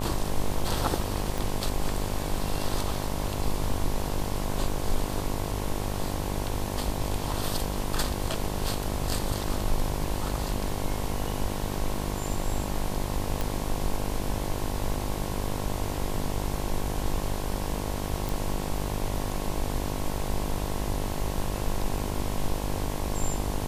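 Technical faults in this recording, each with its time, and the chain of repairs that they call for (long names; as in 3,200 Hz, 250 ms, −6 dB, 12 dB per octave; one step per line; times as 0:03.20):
mains buzz 50 Hz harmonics 22 −33 dBFS
0:01.38: click
0:13.41: click
0:18.29: click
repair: click removal
hum removal 50 Hz, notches 22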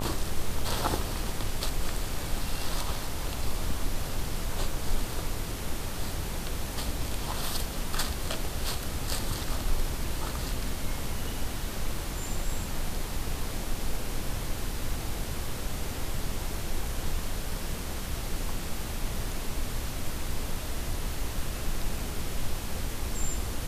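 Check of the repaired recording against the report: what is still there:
none of them is left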